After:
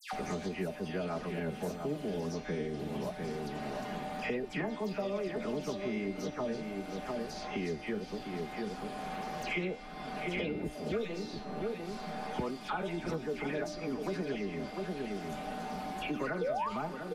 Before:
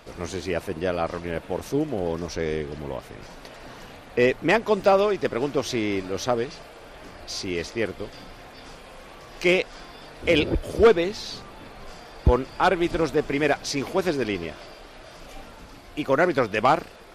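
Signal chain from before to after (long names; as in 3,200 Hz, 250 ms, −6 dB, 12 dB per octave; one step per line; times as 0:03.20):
parametric band 200 Hz +8.5 dB 0.96 octaves
comb filter 4.8 ms, depth 53%
sound drawn into the spectrogram rise, 0:16.29–0:16.59, 450–1,200 Hz −8 dBFS
in parallel at −2.5 dB: compressor whose output falls as the input rises −20 dBFS
on the sum: steady tone 760 Hz −35 dBFS
tuned comb filter 300 Hz, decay 1.1 s, mix 80%
all-pass dispersion lows, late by 126 ms, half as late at 2,200 Hz
flanger 1.6 Hz, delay 5.4 ms, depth 9.4 ms, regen +65%
slap from a distant wall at 120 metres, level −9 dB
multiband upward and downward compressor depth 100%
level −3 dB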